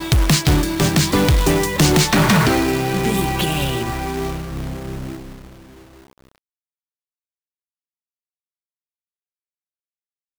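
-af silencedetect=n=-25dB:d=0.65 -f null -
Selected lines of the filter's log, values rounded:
silence_start: 5.16
silence_end: 10.39 | silence_duration: 5.22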